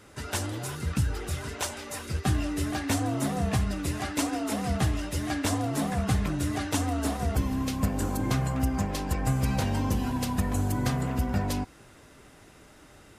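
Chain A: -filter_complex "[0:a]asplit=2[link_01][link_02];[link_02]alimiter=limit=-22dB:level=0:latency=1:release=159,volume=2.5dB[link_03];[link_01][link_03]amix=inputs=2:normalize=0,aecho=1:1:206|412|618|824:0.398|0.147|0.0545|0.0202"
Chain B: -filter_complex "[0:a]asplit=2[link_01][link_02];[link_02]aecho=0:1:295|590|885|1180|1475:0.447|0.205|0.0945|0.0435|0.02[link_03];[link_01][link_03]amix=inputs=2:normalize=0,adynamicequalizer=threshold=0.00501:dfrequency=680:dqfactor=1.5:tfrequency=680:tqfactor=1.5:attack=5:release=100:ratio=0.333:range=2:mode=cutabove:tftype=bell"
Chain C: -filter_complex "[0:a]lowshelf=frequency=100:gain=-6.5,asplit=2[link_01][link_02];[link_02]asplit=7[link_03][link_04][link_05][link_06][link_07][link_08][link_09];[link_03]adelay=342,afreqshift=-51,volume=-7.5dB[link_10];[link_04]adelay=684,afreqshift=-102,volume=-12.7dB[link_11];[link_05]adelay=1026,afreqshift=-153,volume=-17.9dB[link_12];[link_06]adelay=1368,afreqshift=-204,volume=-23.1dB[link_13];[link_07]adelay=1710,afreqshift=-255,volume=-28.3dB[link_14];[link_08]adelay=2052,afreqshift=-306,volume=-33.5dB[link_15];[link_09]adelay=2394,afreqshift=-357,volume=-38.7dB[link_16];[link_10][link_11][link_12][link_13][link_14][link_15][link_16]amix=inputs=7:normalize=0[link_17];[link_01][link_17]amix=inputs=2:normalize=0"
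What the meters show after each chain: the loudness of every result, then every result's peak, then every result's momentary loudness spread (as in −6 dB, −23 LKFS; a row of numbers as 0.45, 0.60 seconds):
−23.0, −28.5, −30.0 LKFS; −9.5, −13.0, −14.0 dBFS; 5, 6, 6 LU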